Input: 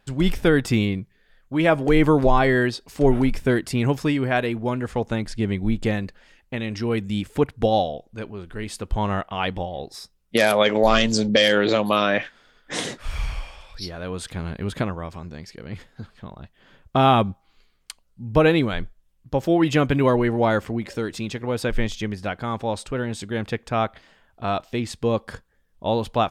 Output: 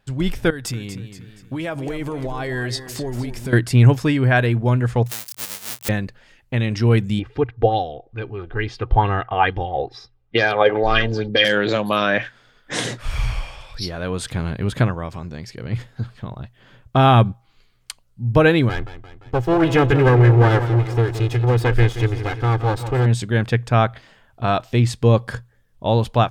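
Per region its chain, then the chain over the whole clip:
0:00.50–0:03.53: downward compressor, threshold −29 dBFS + bass and treble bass −2 dB, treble +7 dB + feedback echo with a swinging delay time 237 ms, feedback 39%, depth 82 cents, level −11 dB
0:05.06–0:05.89: each half-wave held at its own peak + first difference + upward compression, threshold −42 dBFS
0:07.19–0:11.45: high-frequency loss of the air 290 metres + comb filter 2.5 ms, depth 58% + auto-filter bell 2.3 Hz 550–6,400 Hz +11 dB
0:18.69–0:23.06: lower of the sound and its delayed copy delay 2.4 ms + high-shelf EQ 3,600 Hz −7.5 dB + feedback echo with a swinging delay time 173 ms, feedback 54%, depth 84 cents, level −12 dB
whole clip: dynamic equaliser 1,600 Hz, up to +6 dB, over −43 dBFS, Q 6.1; automatic gain control gain up to 7 dB; parametric band 120 Hz +13 dB 0.23 octaves; level −2 dB

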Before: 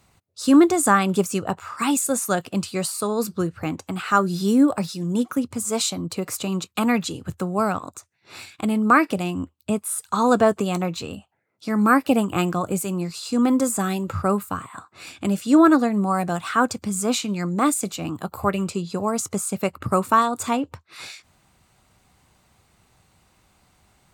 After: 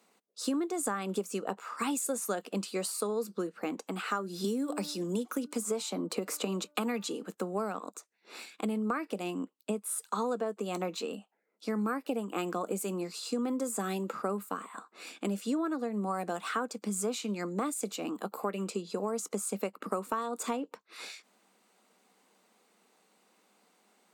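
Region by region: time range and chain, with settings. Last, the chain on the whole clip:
0:04.44–0:07.26: hum removal 296 Hz, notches 5 + multiband upward and downward compressor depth 70%
whole clip: elliptic high-pass filter 200 Hz; parametric band 460 Hz +7.5 dB 0.29 octaves; downward compressor 12 to 1, threshold −23 dBFS; level −5.5 dB

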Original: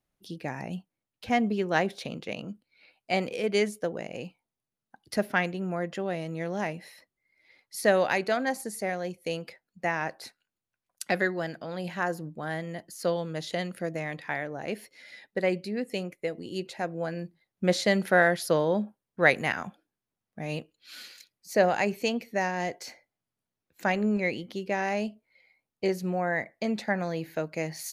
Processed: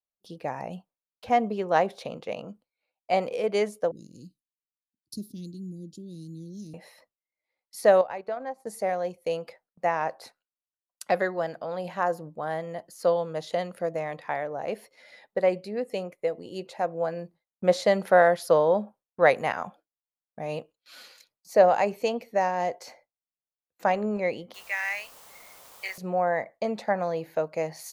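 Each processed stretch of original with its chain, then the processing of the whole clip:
0:03.91–0:06.74: Chebyshev band-stop filter 320–4,000 Hz, order 4 + high-shelf EQ 8,900 Hz +4.5 dB
0:08.01–0:08.67: high-shelf EQ 3,700 Hz −12 dB + downward compressor 2 to 1, threshold −40 dBFS + transient designer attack +3 dB, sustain −11 dB
0:24.54–0:25.98: high-pass with resonance 2,000 Hz, resonance Q 3.8 + high-shelf EQ 8,100 Hz +4.5 dB + bit-depth reduction 8 bits, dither triangular
whole clip: noise gate with hold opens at −45 dBFS; flat-topped bell 750 Hz +9.5 dB; level −4 dB

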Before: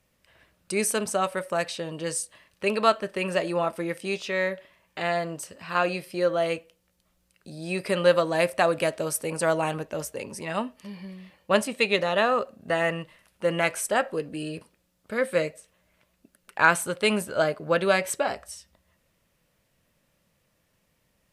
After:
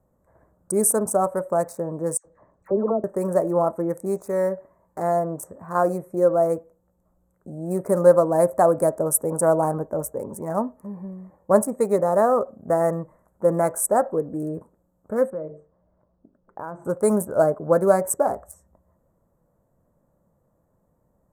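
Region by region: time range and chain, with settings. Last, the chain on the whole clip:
0:02.17–0:03.04: treble cut that deepens with the level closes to 420 Hz, closed at −20 dBFS + high-frequency loss of the air 100 metres + all-pass dispersion lows, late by 80 ms, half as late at 1,400 Hz
0:15.30–0:16.85: head-to-tape spacing loss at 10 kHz 32 dB + mains-hum notches 50/100/150/200/250/300/350/400/450 Hz + downward compressor 2.5 to 1, threshold −37 dBFS
whole clip: adaptive Wiener filter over 9 samples; Chebyshev band-stop filter 880–9,200 Hz, order 2; high-shelf EQ 7,300 Hz +6 dB; level +6 dB

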